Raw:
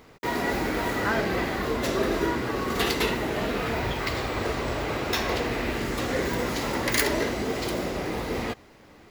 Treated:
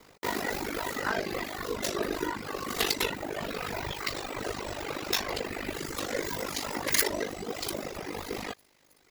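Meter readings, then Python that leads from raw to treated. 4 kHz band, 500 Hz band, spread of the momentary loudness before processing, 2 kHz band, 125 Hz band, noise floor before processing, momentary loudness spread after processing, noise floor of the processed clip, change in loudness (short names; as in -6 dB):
-2.0 dB, -6.5 dB, 5 LU, -5.5 dB, -11.0 dB, -52 dBFS, 9 LU, -64 dBFS, -5.0 dB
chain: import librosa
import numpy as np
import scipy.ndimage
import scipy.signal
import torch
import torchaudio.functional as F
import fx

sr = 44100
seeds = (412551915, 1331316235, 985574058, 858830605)

y = fx.echo_wet_highpass(x, sr, ms=320, feedback_pct=68, hz=1900.0, wet_db=-20.0)
y = fx.dereverb_blind(y, sr, rt60_s=1.8)
y = fx.bass_treble(y, sr, bass_db=-5, treble_db=7)
y = y * np.sin(2.0 * np.pi * 25.0 * np.arange(len(y)) / sr)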